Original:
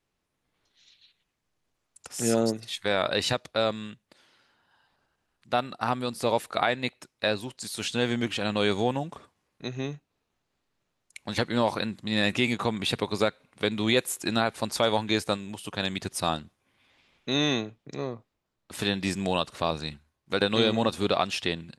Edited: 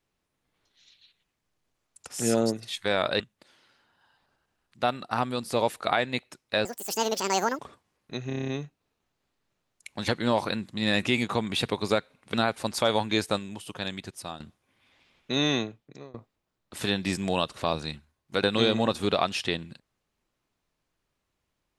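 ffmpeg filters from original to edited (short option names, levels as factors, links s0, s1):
-filter_complex "[0:a]asplit=14[s0][s1][s2][s3][s4][s5][s6][s7][s8][s9][s10][s11][s12][s13];[s0]atrim=end=3.202[s14];[s1]atrim=start=3.898:end=7.354[s15];[s2]atrim=start=7.35:end=9.1,asetpts=PTS-STARTPTS,asetrate=82026,aresample=44100[s16];[s3]atrim=start=9.096:end=9.812[s17];[s4]atrim=start=9.778:end=9.812[s18];[s5]atrim=start=9.778:end=9.812[s19];[s6]atrim=start=9.778:end=9.812[s20];[s7]atrim=start=9.778:end=9.812[s21];[s8]atrim=start=9.778:end=9.812[s22];[s9]atrim=start=9.778:end=9.812[s23];[s10]atrim=start=9.778:end=13.642[s24];[s11]atrim=start=14.318:end=16.38,asetpts=PTS-STARTPTS,afade=t=out:st=1.072:d=0.99:silence=0.199526[s25];[s12]atrim=start=16.38:end=18.12,asetpts=PTS-STARTPTS,afade=t=in:d=0.004:c=hsin:silence=0.199526,afade=t=out:st=1.23:d=0.51:silence=0.0668344[s26];[s13]atrim=start=18.12,asetpts=PTS-STARTPTS,afade=t=in:d=0.004:c=hsin:silence=0.0668344[s27];[s14][s15]acrossfade=d=0.004:c1=hsin:c2=hsin[s28];[s28][s16]acrossfade=d=0.004:c1=hsin:c2=hsin[s29];[s29][s17]acrossfade=d=0.004:c1=hsin:c2=hsin[s30];[s30][s18]acrossfade=d=0.004:c1=hsin:c2=hsin[s31];[s31][s19]acrossfade=d=0.004:c1=hsin:c2=hsin[s32];[s32][s20]acrossfade=d=0.004:c1=hsin:c2=hsin[s33];[s33][s21]acrossfade=d=0.004:c1=hsin:c2=hsin[s34];[s34][s22]acrossfade=d=0.004:c1=hsin:c2=hsin[s35];[s35][s23]acrossfade=d=0.004:c1=hsin:c2=hsin[s36];[s36][s24]acrossfade=d=0.004:c1=hsin:c2=hsin[s37];[s25][s26][s27]concat=n=3:v=0:a=1[s38];[s37][s38]acrossfade=d=0.004:c1=hsin:c2=hsin"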